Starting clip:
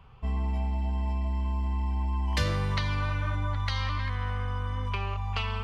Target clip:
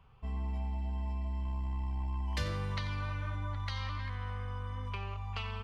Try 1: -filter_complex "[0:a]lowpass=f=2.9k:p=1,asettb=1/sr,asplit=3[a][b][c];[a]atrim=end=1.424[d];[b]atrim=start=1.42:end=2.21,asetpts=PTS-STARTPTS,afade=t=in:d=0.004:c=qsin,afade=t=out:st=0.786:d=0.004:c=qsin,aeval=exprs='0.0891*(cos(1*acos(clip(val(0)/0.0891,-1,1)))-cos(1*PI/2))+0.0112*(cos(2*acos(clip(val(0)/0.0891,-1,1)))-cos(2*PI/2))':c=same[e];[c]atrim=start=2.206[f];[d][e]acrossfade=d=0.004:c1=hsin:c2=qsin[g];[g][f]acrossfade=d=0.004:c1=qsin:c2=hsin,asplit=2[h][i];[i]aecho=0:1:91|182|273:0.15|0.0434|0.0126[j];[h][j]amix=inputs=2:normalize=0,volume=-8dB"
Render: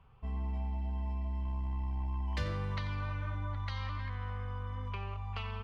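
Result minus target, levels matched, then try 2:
4000 Hz band -3.5 dB
-filter_complex "[0:a]asettb=1/sr,asplit=3[a][b][c];[a]atrim=end=1.424[d];[b]atrim=start=1.42:end=2.21,asetpts=PTS-STARTPTS,afade=t=in:d=0.004:c=qsin,afade=t=out:st=0.786:d=0.004:c=qsin,aeval=exprs='0.0891*(cos(1*acos(clip(val(0)/0.0891,-1,1)))-cos(1*PI/2))+0.0112*(cos(2*acos(clip(val(0)/0.0891,-1,1)))-cos(2*PI/2))':c=same[e];[c]atrim=start=2.206[f];[d][e]acrossfade=d=0.004:c1=hsin:c2=qsin[g];[g][f]acrossfade=d=0.004:c1=qsin:c2=hsin,asplit=2[h][i];[i]aecho=0:1:91|182|273:0.15|0.0434|0.0126[j];[h][j]amix=inputs=2:normalize=0,volume=-8dB"

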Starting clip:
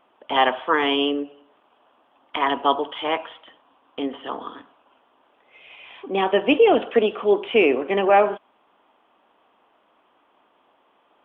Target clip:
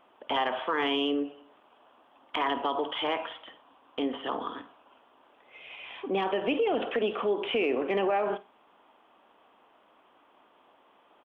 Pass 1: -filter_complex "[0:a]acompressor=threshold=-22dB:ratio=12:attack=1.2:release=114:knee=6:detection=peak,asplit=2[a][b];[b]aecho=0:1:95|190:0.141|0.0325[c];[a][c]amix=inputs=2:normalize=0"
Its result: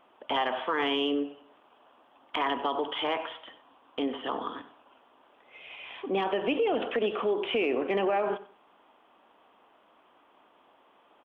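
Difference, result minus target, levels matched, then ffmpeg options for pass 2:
echo 42 ms late
-filter_complex "[0:a]acompressor=threshold=-22dB:ratio=12:attack=1.2:release=114:knee=6:detection=peak,asplit=2[a][b];[b]aecho=0:1:53|106:0.141|0.0325[c];[a][c]amix=inputs=2:normalize=0"

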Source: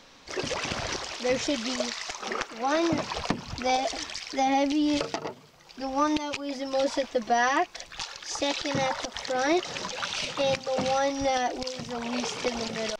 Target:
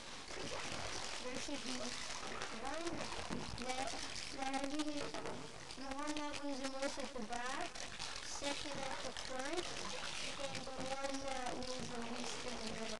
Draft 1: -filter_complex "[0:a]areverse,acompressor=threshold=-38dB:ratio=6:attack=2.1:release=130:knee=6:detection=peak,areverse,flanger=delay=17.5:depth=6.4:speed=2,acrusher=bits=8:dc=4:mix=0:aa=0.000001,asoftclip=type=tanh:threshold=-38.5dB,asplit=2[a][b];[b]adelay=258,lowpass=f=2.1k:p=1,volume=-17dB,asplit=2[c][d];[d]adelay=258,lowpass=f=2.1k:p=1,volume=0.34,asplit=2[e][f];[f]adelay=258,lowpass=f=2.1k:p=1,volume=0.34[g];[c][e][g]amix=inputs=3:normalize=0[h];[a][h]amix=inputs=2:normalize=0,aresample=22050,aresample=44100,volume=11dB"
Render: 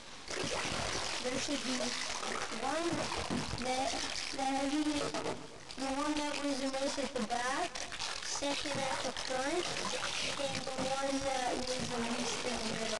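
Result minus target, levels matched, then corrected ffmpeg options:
compressor: peak gain reduction -6 dB
-filter_complex "[0:a]areverse,acompressor=threshold=-45.5dB:ratio=6:attack=2.1:release=130:knee=6:detection=peak,areverse,flanger=delay=17.5:depth=6.4:speed=2,acrusher=bits=8:dc=4:mix=0:aa=0.000001,asoftclip=type=tanh:threshold=-38.5dB,asplit=2[a][b];[b]adelay=258,lowpass=f=2.1k:p=1,volume=-17dB,asplit=2[c][d];[d]adelay=258,lowpass=f=2.1k:p=1,volume=0.34,asplit=2[e][f];[f]adelay=258,lowpass=f=2.1k:p=1,volume=0.34[g];[c][e][g]amix=inputs=3:normalize=0[h];[a][h]amix=inputs=2:normalize=0,aresample=22050,aresample=44100,volume=11dB"

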